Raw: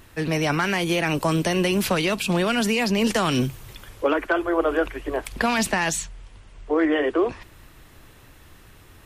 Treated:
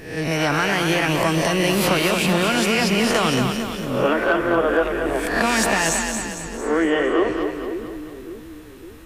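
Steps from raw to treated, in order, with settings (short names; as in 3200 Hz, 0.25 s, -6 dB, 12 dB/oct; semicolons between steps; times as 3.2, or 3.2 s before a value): spectral swells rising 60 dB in 0.66 s; split-band echo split 350 Hz, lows 0.556 s, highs 0.227 s, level -5.5 dB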